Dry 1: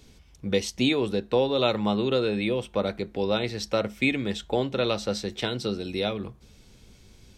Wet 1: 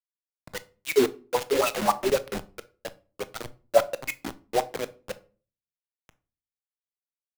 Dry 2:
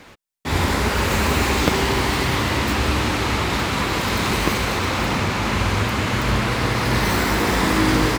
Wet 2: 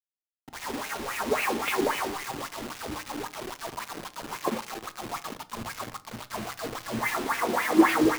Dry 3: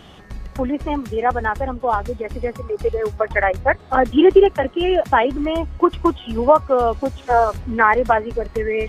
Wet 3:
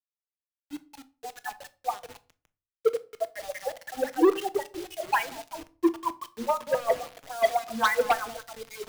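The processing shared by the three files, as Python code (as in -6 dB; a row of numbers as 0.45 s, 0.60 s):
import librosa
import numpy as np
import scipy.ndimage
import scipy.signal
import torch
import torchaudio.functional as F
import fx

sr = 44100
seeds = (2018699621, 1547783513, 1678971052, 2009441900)

p1 = fx.bin_expand(x, sr, power=2.0)
p2 = fx.high_shelf(p1, sr, hz=5300.0, db=-2.5)
p3 = p2 + fx.echo_thinned(p2, sr, ms=189, feedback_pct=53, hz=400.0, wet_db=-8.0, dry=0)
p4 = fx.dynamic_eq(p3, sr, hz=780.0, q=0.83, threshold_db=-32.0, ratio=4.0, max_db=4)
p5 = fx.env_lowpass(p4, sr, base_hz=430.0, full_db=-13.0)
p6 = fx.comb_fb(p5, sr, f0_hz=230.0, decay_s=0.33, harmonics='odd', damping=0.0, mix_pct=70)
p7 = fx.wah_lfo(p6, sr, hz=3.7, low_hz=290.0, high_hz=2700.0, q=3.8)
p8 = np.clip(p7, -10.0 ** (-26.5 / 20.0), 10.0 ** (-26.5 / 20.0))
p9 = fx.quant_dither(p8, sr, seeds[0], bits=8, dither='none')
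p10 = fx.room_shoebox(p9, sr, seeds[1], volume_m3=470.0, walls='furnished', distance_m=0.5)
p11 = fx.band_widen(p10, sr, depth_pct=70)
y = p11 * 10.0 ** (-30 / 20.0) / np.sqrt(np.mean(np.square(p11)))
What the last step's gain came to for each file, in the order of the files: +19.5 dB, +13.5 dB, +8.5 dB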